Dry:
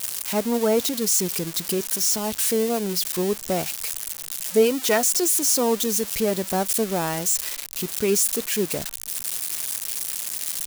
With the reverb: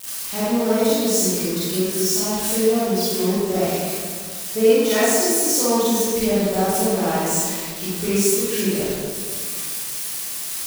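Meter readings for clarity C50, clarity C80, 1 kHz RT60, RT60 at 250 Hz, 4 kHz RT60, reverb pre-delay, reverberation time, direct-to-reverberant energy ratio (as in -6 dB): -6.0 dB, -1.5 dB, 1.7 s, 2.3 s, 1.1 s, 32 ms, 1.9 s, -11.0 dB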